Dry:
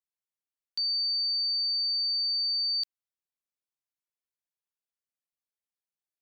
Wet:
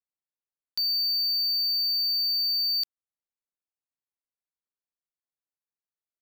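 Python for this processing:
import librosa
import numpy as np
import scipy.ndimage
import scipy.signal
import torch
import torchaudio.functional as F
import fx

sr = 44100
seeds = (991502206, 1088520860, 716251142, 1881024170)

y = fx.wiener(x, sr, points=15)
y = fx.high_shelf(y, sr, hz=4200.0, db=11.0)
y = fx.leveller(y, sr, passes=2)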